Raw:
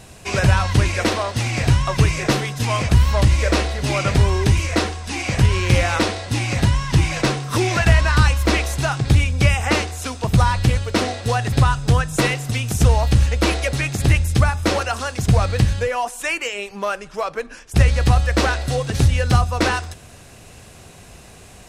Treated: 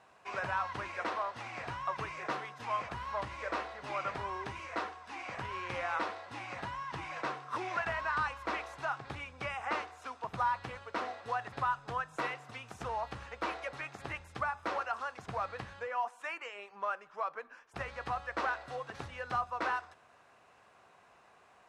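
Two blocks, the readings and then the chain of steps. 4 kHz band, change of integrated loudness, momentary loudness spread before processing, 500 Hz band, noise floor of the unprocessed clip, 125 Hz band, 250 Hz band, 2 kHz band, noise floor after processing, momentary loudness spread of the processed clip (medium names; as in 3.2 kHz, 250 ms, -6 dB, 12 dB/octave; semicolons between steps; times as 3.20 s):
-23.0 dB, -19.0 dB, 7 LU, -17.5 dB, -43 dBFS, -33.5 dB, -25.5 dB, -14.5 dB, -63 dBFS, 8 LU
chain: band-pass filter 1.1 kHz, Q 1.7; trim -8.5 dB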